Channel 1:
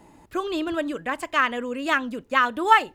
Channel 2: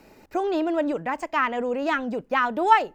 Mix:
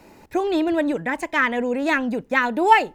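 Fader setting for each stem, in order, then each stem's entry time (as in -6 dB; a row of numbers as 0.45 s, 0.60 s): -1.0 dB, +2.0 dB; 0.00 s, 0.00 s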